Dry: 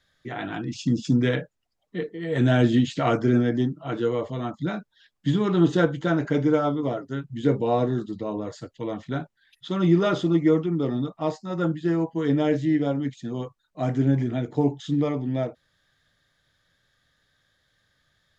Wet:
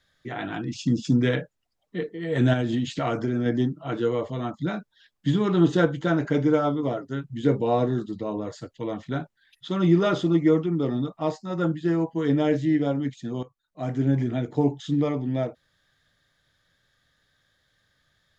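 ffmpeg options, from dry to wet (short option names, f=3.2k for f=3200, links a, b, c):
-filter_complex "[0:a]asettb=1/sr,asplit=3[a][b][c];[a]atrim=end=2.534[d];[b]atrim=start=2.53:end=3.46,asetpts=PTS-STARTPTS,afade=t=in:d=0.004:c=qsin,afade=t=out:st=0.926:d=0.004:c=qsin,acompressor=threshold=-21dB:ratio=6:attack=3.2:release=140:knee=1:detection=peak[e];[c]atrim=start=3.456[f];[d][e]acrossfade=d=0.004:c1=hsin:c2=qsin[g];[g][f]acrossfade=d=0.004:c1=qsin:c2=hsin,asplit=2[h][i];[h]atrim=end=13.43,asetpts=PTS-STARTPTS,afade=t=out:st=13.426:d=0.004:c=hsin:silence=0.211349[j];[i]atrim=start=13.43,asetpts=PTS-STARTPTS,afade=t=in:d=0.8:silence=0.211349[k];[j][k]concat=n=2:v=0:a=1"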